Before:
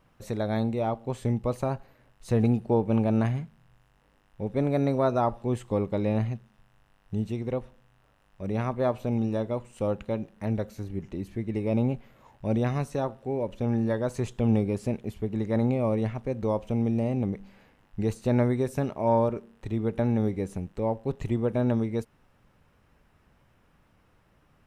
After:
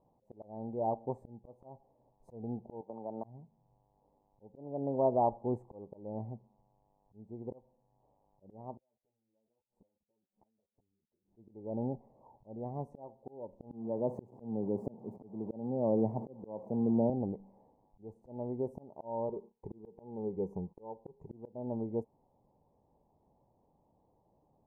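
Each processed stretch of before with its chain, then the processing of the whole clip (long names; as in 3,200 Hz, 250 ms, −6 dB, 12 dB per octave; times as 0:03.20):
0:02.81–0:03.24: high-pass filter 1,000 Hz 6 dB per octave + noise gate −42 dBFS, range −12 dB + multiband upward and downward compressor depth 100%
0:08.77–0:11.24: output level in coarse steps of 21 dB + gate with flip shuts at −42 dBFS, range −31 dB + string-ensemble chorus
0:13.70–0:17.10: converter with a step at zero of −32.5 dBFS + high-pass filter 130 Hz 24 dB per octave + spectral tilt −2 dB per octave
0:19.28–0:21.27: noise gate −53 dBFS, range −20 dB + EQ curve with evenly spaced ripples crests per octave 0.79, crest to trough 9 dB
whole clip: elliptic low-pass filter 890 Hz, stop band 40 dB; spectral tilt +3 dB per octave; volume swells 516 ms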